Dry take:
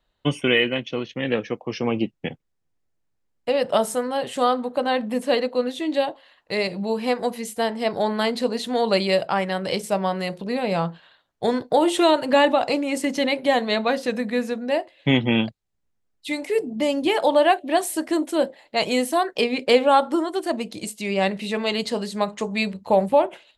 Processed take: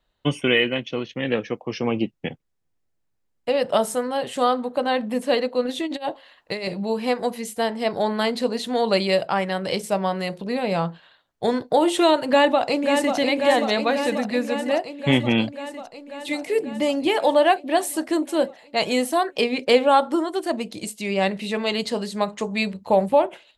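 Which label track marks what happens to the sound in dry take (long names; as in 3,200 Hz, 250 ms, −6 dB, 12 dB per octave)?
5.650000	6.740000	compressor whose output falls as the input rises −26 dBFS, ratio −0.5
12.290000	13.160000	delay throw 540 ms, feedback 75%, level −5.5 dB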